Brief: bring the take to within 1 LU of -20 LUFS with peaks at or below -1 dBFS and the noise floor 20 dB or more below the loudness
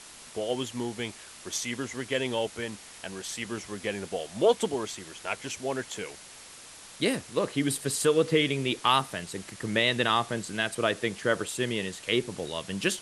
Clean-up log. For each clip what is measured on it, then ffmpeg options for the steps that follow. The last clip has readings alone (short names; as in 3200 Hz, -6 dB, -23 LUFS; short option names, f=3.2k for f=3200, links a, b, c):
noise floor -48 dBFS; noise floor target -49 dBFS; loudness -29.0 LUFS; peak -9.5 dBFS; loudness target -20.0 LUFS
-> -af "afftdn=nr=6:nf=-48"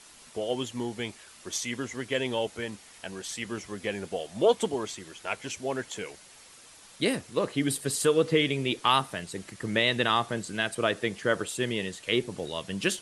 noise floor -52 dBFS; loudness -29.5 LUFS; peak -9.5 dBFS; loudness target -20.0 LUFS
-> -af "volume=9.5dB,alimiter=limit=-1dB:level=0:latency=1"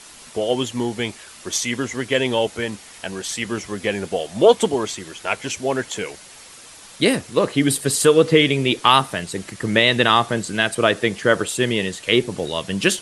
loudness -20.0 LUFS; peak -1.0 dBFS; noise floor -43 dBFS